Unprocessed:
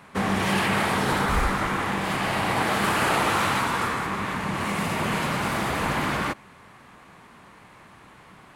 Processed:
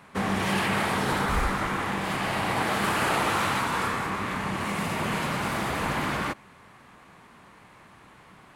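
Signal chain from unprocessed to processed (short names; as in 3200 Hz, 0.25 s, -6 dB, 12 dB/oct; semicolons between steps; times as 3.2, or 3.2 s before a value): 3.69–4.56 doubler 32 ms -6 dB; gain -2.5 dB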